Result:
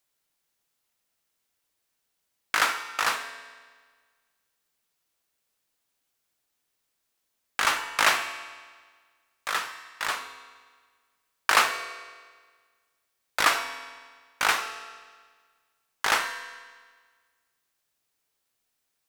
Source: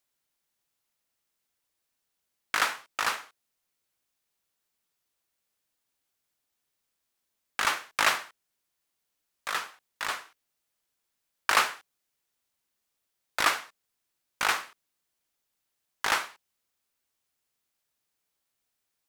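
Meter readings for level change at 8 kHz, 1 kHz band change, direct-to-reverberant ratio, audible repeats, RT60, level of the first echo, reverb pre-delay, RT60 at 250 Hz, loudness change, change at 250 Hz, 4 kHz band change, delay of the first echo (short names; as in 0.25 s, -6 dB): +3.0 dB, +3.0 dB, 7.0 dB, none, 1.6 s, none, 4 ms, 1.6 s, +2.5 dB, +2.5 dB, +3.0 dB, none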